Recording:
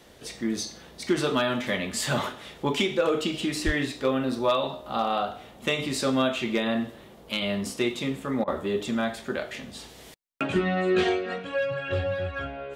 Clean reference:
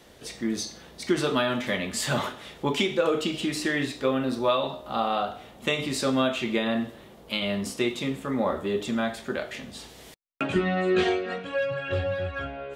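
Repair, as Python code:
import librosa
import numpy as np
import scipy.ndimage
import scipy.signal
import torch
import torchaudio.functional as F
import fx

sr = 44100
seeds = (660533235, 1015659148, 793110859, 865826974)

y = fx.fix_declip(x, sr, threshold_db=-15.0)
y = fx.highpass(y, sr, hz=140.0, slope=24, at=(3.65, 3.77), fade=0.02)
y = fx.fix_interpolate(y, sr, at_s=(8.44,), length_ms=35.0)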